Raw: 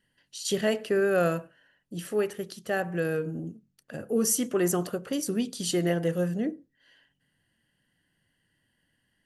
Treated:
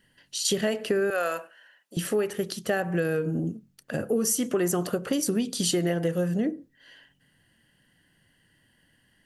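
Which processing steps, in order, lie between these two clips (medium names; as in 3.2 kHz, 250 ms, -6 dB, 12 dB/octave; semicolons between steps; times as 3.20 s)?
1.10–1.97 s: high-pass 700 Hz 12 dB/octave; compression 6:1, threshold -31 dBFS, peak gain reduction 10.5 dB; trim +8.5 dB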